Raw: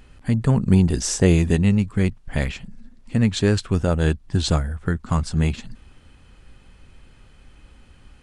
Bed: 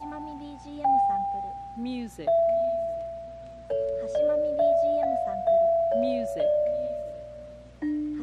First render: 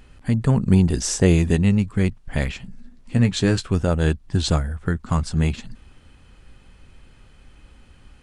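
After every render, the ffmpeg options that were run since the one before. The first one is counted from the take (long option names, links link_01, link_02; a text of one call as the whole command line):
ffmpeg -i in.wav -filter_complex "[0:a]asettb=1/sr,asplit=3[link_01][link_02][link_03];[link_01]atrim=end=2.584[link_04];[link_02]atrim=start=2.58:end=3.71,asetpts=PTS-STARTPTS,afade=type=in:duration=0.004:curve=qsin,afade=type=out:start_time=1.126:duration=0.004:curve=qsin,asplit=2[link_05][link_06];[link_06]adelay=16,volume=-7dB[link_07];[link_05][link_07]amix=inputs=2:normalize=0,atrim=end_sample=49833[link_08];[link_03]atrim=start=3.706[link_09];[link_04][link_08]acrossfade=duration=0.004:curve1=hsin:curve2=qsin[link_10];[link_10][link_09]acrossfade=duration=0.004:curve1=qsin:curve2=hsin" out.wav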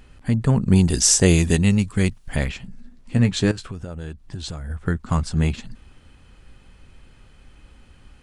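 ffmpeg -i in.wav -filter_complex "[0:a]asettb=1/sr,asplit=3[link_01][link_02][link_03];[link_01]atrim=end=0.754[link_04];[link_02]atrim=start=0.75:end=2.36,asetpts=PTS-STARTPTS,afade=type=in:duration=0.004:curve=qsin,afade=type=out:start_time=1.606:duration=0.004:curve=qsin,highshelf=frequency=3300:gain=11.5[link_05];[link_03]atrim=start=2.356[link_06];[link_04][link_05]acrossfade=duration=0.004:curve1=hsin:curve2=qsin[link_07];[link_07][link_06]acrossfade=duration=0.004:curve1=qsin:curve2=hsin,asettb=1/sr,asplit=3[link_08][link_09][link_10];[link_08]atrim=end=3.514[link_11];[link_09]atrim=start=3.51:end=4.7,asetpts=PTS-STARTPTS,afade=type=in:duration=0.004:curve=qsin,afade=type=out:start_time=1.186:duration=0.004:curve=qsin,acompressor=threshold=-27dB:ratio=16:attack=3.2:release=140:knee=1:detection=peak[link_12];[link_10]atrim=start=4.696[link_13];[link_11][link_12]acrossfade=duration=0.004:curve1=hsin:curve2=qsin[link_14];[link_14][link_13]acrossfade=duration=0.004:curve1=qsin:curve2=hsin" out.wav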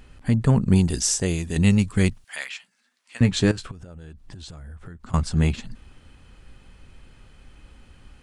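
ffmpeg -i in.wav -filter_complex "[0:a]asettb=1/sr,asplit=3[link_01][link_02][link_03];[link_01]atrim=end=2.244[link_04];[link_02]atrim=start=2.24:end=3.21,asetpts=PTS-STARTPTS,afade=type=in:duration=0.004:curve=qsin,afade=type=out:start_time=0.966:duration=0.004:curve=qsin,highpass=1400[link_05];[link_03]atrim=start=3.206[link_06];[link_04][link_05]acrossfade=duration=0.004:curve1=hsin:curve2=qsin[link_07];[link_07][link_06]acrossfade=duration=0.004:curve1=qsin:curve2=hsin,asettb=1/sr,asplit=3[link_08][link_09][link_10];[link_08]atrim=end=3.714[link_11];[link_09]atrim=start=3.71:end=5.14,asetpts=PTS-STARTPTS,afade=type=in:duration=0.004:curve=qsin,afade=type=out:start_time=1.426:duration=0.004:curve=qsin,acompressor=threshold=-36dB:ratio=12:attack=3.2:release=140:knee=1:detection=peak[link_12];[link_10]atrim=start=5.136[link_13];[link_11][link_12]acrossfade=duration=0.004:curve1=hsin:curve2=qsin[link_14];[link_14][link_13]acrossfade=duration=0.004:curve1=qsin:curve2=hsin,asplit=2[link_15][link_16];[link_15]atrim=end=1.56,asetpts=PTS-STARTPTS,afade=type=out:start_time=0.59:duration=0.97:curve=qua:silence=0.298538[link_17];[link_16]atrim=start=1.56,asetpts=PTS-STARTPTS,afade=type=in:duration=0.004:curve=hsin:silence=0.298538[link_18];[link_17][link_18]concat=n=2:v=0:a=1" out.wav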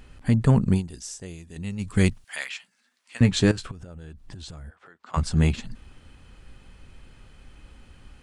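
ffmpeg -i in.wav -filter_complex "[0:a]asplit=3[link_01][link_02][link_03];[link_01]afade=type=out:start_time=4.69:duration=0.02[link_04];[link_02]highpass=560,lowpass=5000,afade=type=in:start_time=4.69:duration=0.02,afade=type=out:start_time=5.16:duration=0.02[link_05];[link_03]afade=type=in:start_time=5.16:duration=0.02[link_06];[link_04][link_05][link_06]amix=inputs=3:normalize=0,asplit=3[link_07][link_08][link_09];[link_07]atrim=end=0.83,asetpts=PTS-STARTPTS,afade=type=out:start_time=0.67:duration=0.16:silence=0.177828[link_10];[link_08]atrim=start=0.83:end=1.78,asetpts=PTS-STARTPTS,volume=-15dB[link_11];[link_09]atrim=start=1.78,asetpts=PTS-STARTPTS,afade=type=in:duration=0.16:silence=0.177828[link_12];[link_10][link_11][link_12]concat=n=3:v=0:a=1" out.wav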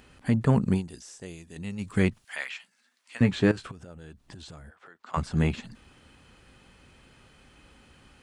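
ffmpeg -i in.wav -filter_complex "[0:a]highpass=frequency=180:poles=1,acrossover=split=2800[link_01][link_02];[link_02]acompressor=threshold=-45dB:ratio=4:attack=1:release=60[link_03];[link_01][link_03]amix=inputs=2:normalize=0" out.wav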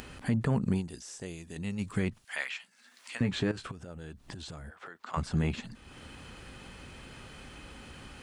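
ffmpeg -i in.wav -af "acompressor=mode=upward:threshold=-38dB:ratio=2.5,alimiter=limit=-19.5dB:level=0:latency=1:release=103" out.wav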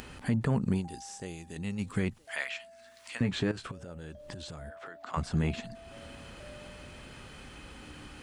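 ffmpeg -i in.wav -i bed.wav -filter_complex "[1:a]volume=-27.5dB[link_01];[0:a][link_01]amix=inputs=2:normalize=0" out.wav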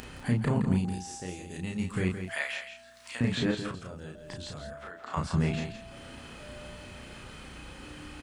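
ffmpeg -i in.wav -filter_complex "[0:a]asplit=2[link_01][link_02];[link_02]adelay=33,volume=-2.5dB[link_03];[link_01][link_03]amix=inputs=2:normalize=0,asplit=2[link_04][link_05];[link_05]aecho=0:1:167:0.355[link_06];[link_04][link_06]amix=inputs=2:normalize=0" out.wav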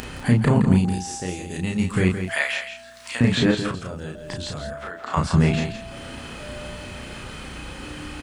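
ffmpeg -i in.wav -af "volume=9.5dB" out.wav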